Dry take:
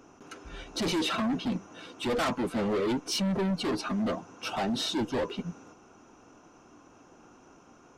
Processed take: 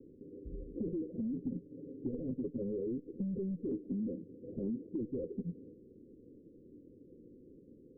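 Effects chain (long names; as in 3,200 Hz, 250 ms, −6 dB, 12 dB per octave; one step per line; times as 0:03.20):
Butterworth low-pass 520 Hz 96 dB per octave
0:01.36–0:02.62: comb filter 7.2 ms, depth 82%
0:03.71–0:04.90: dynamic equaliser 290 Hz, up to +6 dB, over −43 dBFS, Q 1.2
downward compressor 6 to 1, threshold −36 dBFS, peak gain reduction 13 dB
level +1 dB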